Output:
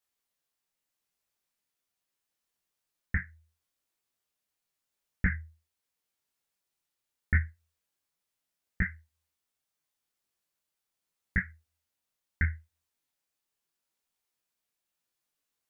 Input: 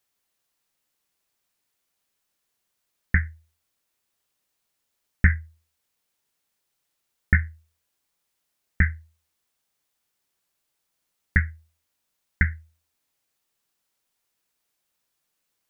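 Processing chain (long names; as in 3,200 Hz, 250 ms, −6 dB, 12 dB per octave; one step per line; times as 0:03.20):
micro pitch shift up and down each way 27 cents
level −4 dB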